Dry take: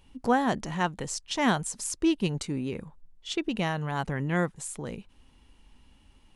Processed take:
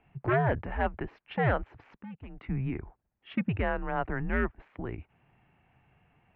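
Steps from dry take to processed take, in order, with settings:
wave folding −20 dBFS
0:01.95–0:02.43: output level in coarse steps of 21 dB
single-sideband voice off tune −120 Hz 160–2,500 Hz
level +1 dB

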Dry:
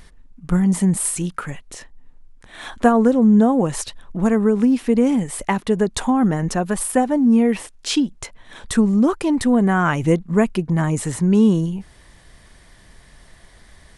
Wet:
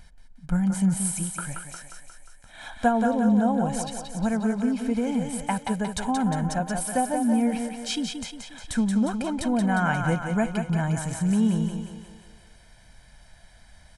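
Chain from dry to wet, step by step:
comb filter 1.3 ms, depth 70%
on a send: feedback echo with a high-pass in the loop 178 ms, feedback 59%, high-pass 230 Hz, level −5 dB
on the sum: level −8.5 dB

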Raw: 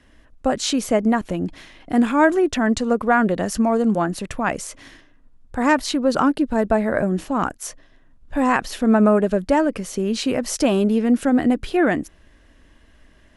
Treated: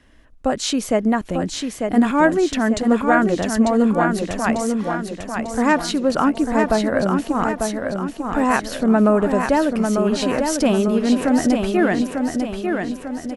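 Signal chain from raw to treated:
repeating echo 896 ms, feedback 49%, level −5 dB

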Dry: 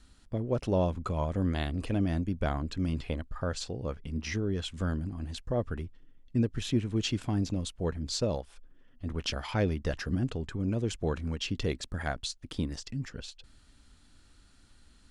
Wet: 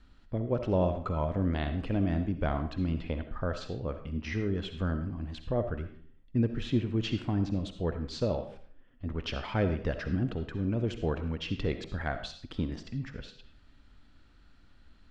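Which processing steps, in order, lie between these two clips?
low-pass filter 3,100 Hz 12 dB per octave
convolution reverb RT60 0.50 s, pre-delay 25 ms, DRR 8 dB

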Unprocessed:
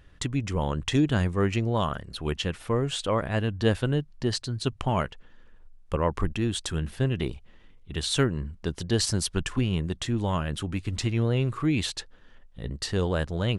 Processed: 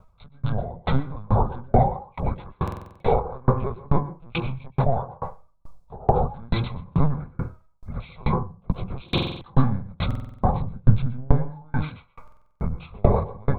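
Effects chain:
partials spread apart or drawn together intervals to 80%
linear-prediction vocoder at 8 kHz pitch kept
convolution reverb RT60 0.45 s, pre-delay 118 ms, DRR 4.5 dB
background noise brown −64 dBFS
0:10.55–0:11.32: low-shelf EQ 430 Hz +10 dB
automatic gain control gain up to 11 dB
parametric band 3,000 Hz −12 dB 0.42 octaves
phaser with its sweep stopped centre 760 Hz, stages 4
buffer that repeats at 0:02.63/0:09.04/0:10.06/0:12.23, samples 2,048, times 7
tremolo with a ramp in dB decaying 2.3 Hz, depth 34 dB
level +8.5 dB

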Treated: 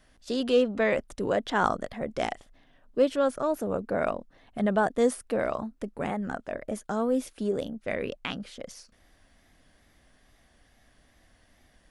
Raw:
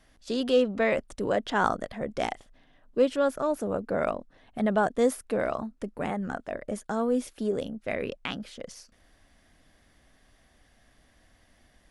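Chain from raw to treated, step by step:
tape wow and flutter 60 cents

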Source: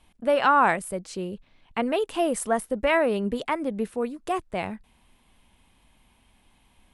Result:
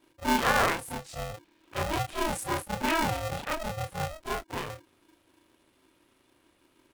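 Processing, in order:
every overlapping window played backwards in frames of 77 ms
ring modulator with a square carrier 320 Hz
level −2 dB

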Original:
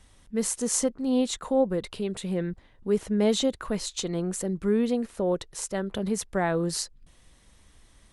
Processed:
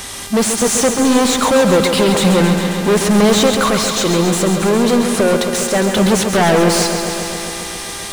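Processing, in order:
bass and treble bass +5 dB, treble +12 dB
0:03.57–0:05.93: downward compressor 2.5 to 1, threshold −32 dBFS, peak gain reduction 10 dB
mid-hump overdrive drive 34 dB, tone 2,700 Hz, clips at −11.5 dBFS
hum with harmonics 400 Hz, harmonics 34, −43 dBFS −1 dB per octave
feedback echo at a low word length 135 ms, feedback 80%, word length 8 bits, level −7.5 dB
level +5.5 dB

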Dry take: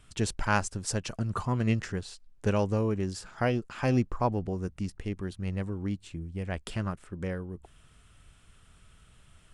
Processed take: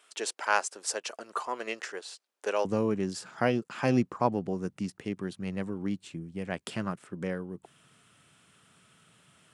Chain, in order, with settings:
high-pass filter 420 Hz 24 dB per octave, from 0:02.65 140 Hz
level +1.5 dB

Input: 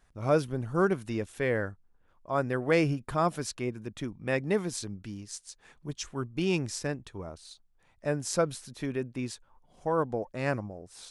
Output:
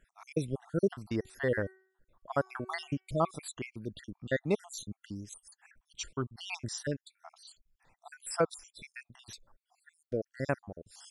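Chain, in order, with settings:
time-frequency cells dropped at random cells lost 63%
0:01.19–0:03.31: hum removal 378 Hz, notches 8

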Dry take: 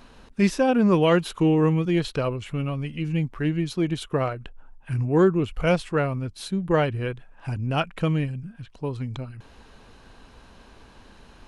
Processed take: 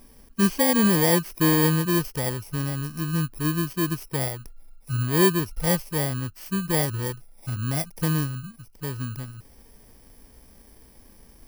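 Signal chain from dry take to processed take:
samples in bit-reversed order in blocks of 32 samples
harmonic and percussive parts rebalanced percussive −6 dB

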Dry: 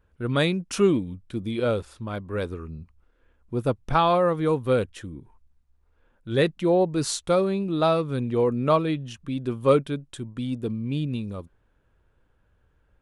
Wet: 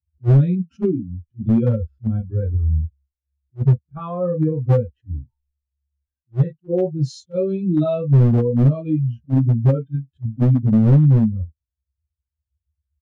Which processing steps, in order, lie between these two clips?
spectral dynamics exaggerated over time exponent 2
downward compressor 16 to 1, threshold −36 dBFS, peak gain reduction 21.5 dB
harmonic and percussive parts rebalanced percussive −15 dB
low-pass filter 1,600 Hz 12 dB per octave, from 0:07.01 4,700 Hz, from 0:08.88 1,900 Hz
convolution reverb, pre-delay 3 ms, DRR −8 dB
hard clipping −9 dBFS, distortion −12 dB
double-tracking delay 14 ms −10.5 dB
level that may rise only so fast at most 480 dB per second
level −1 dB

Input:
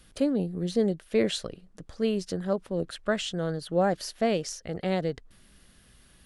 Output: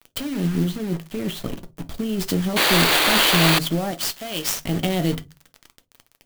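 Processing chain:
thirty-one-band graphic EQ 250 Hz +6 dB, 500 Hz −12 dB, 1,000 Hz −6 dB, 1,600 Hz −7 dB, 3,150 Hz +10 dB, 8,000 Hz +10 dB
compressor whose output falls as the input rises −30 dBFS, ratio −1
bit reduction 7 bits
0:00.64–0:02.20: de-essing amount 100%
convolution reverb RT60 0.20 s, pre-delay 6 ms, DRR 8 dB
0:02.56–0:03.59: sound drawn into the spectrogram noise 280–4,800 Hz −25 dBFS
0:03.91–0:04.60: low-shelf EQ 460 Hz −12 dB
converter with an unsteady clock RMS 0.027 ms
level +7 dB

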